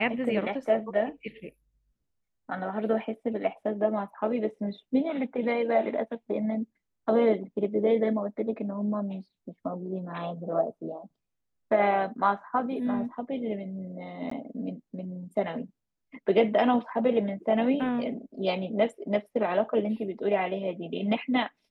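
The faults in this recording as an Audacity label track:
14.300000	14.310000	dropout 14 ms

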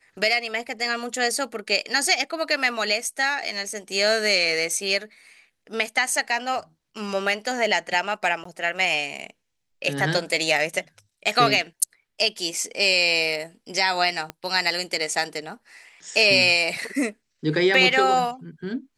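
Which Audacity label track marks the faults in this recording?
8.440000	8.450000	dropout 14 ms
14.300000	14.300000	pop -16 dBFS

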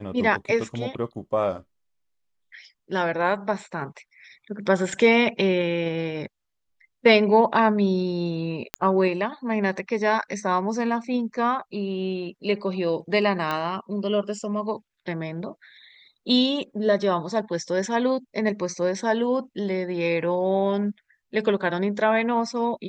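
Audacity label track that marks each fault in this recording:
8.740000	8.740000	pop -9 dBFS
13.510000	13.510000	pop -14 dBFS

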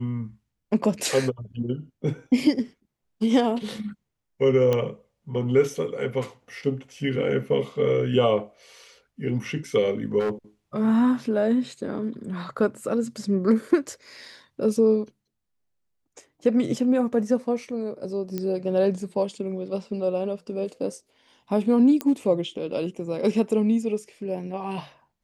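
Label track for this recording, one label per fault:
4.730000	4.730000	pop -12 dBFS
10.190000	10.310000	clipped -21.5 dBFS
18.380000	18.380000	pop -16 dBFS
22.010000	22.010000	pop -12 dBFS

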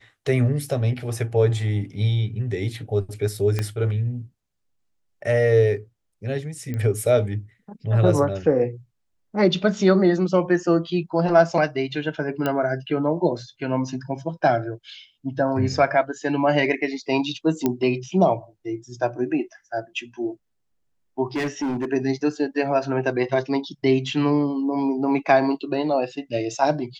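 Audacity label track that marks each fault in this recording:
3.590000	3.590000	pop -11 dBFS
6.740000	6.740000	pop -18 dBFS
12.460000	12.460000	pop -11 dBFS
17.660000	17.660000	pop -8 dBFS
21.360000	21.850000	clipped -21.5 dBFS

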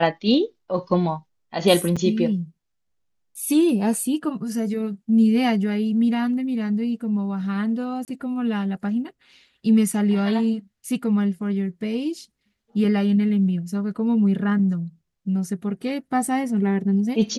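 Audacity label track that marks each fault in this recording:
1.960000	1.970000	dropout 6.2 ms
8.050000	8.080000	dropout 28 ms

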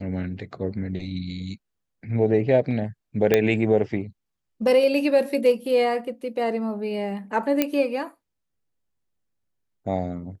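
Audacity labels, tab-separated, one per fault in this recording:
3.340000	3.340000	pop -5 dBFS
7.620000	7.620000	pop -6 dBFS

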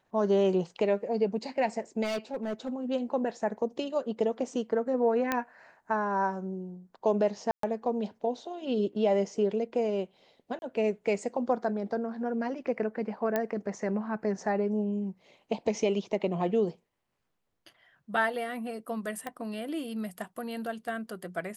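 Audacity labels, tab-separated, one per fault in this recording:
2.030000	2.690000	clipped -27.5 dBFS
5.320000	5.320000	pop -13 dBFS
7.510000	7.630000	dropout 123 ms
10.590000	10.620000	dropout 31 ms
13.360000	13.360000	pop -15 dBFS
19.270000	19.270000	pop -22 dBFS

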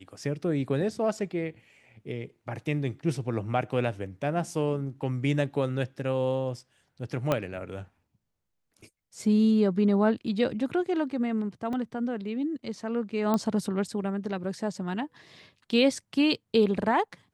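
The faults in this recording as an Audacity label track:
7.320000	7.320000	pop -12 dBFS
11.730000	11.730000	dropout 2.1 ms
13.340000	13.340000	pop -14 dBFS

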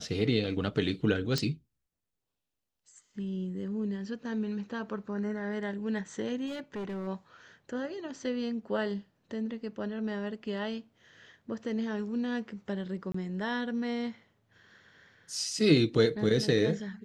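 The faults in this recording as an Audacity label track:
1.380000	1.380000	pop -16 dBFS
6.460000	7.080000	clipped -33 dBFS
13.120000	13.140000	dropout 24 ms

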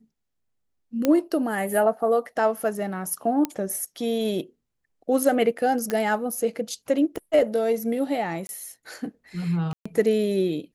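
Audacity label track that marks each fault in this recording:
1.050000	1.050000	pop -9 dBFS
3.450000	3.450000	pop -11 dBFS
5.900000	5.900000	pop -13 dBFS
7.160000	7.160000	pop -19 dBFS
8.470000	8.490000	dropout 21 ms
9.730000	9.860000	dropout 125 ms

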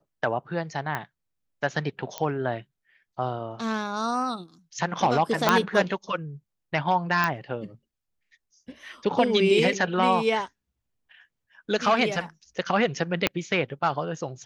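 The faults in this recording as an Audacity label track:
0.950000	0.950000	pop -15 dBFS
2.180000	2.180000	pop -13 dBFS
5.490000	5.490000	pop -4 dBFS
7.240000	7.240000	pop -10 dBFS
13.270000	13.270000	pop -6 dBFS

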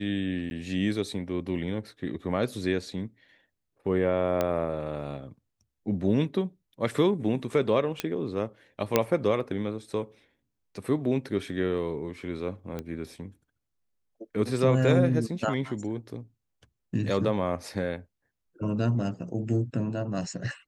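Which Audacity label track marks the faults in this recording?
0.500000	0.510000	dropout
4.410000	4.410000	pop -13 dBFS
8.000000	8.000000	pop -12 dBFS
8.960000	8.960000	pop -6 dBFS
12.790000	12.790000	pop -21 dBFS

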